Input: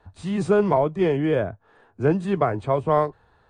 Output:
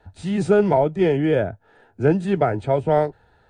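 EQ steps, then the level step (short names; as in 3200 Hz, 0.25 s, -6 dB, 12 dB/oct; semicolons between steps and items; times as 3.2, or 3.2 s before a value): Butterworth band-stop 1100 Hz, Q 4; +2.5 dB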